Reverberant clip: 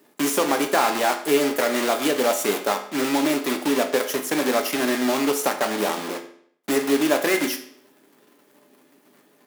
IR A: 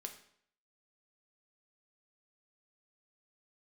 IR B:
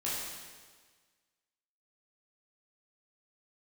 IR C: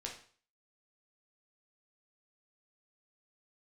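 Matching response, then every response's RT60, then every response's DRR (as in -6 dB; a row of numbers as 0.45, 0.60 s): A; 0.65, 1.5, 0.45 s; 4.5, -8.5, -1.0 dB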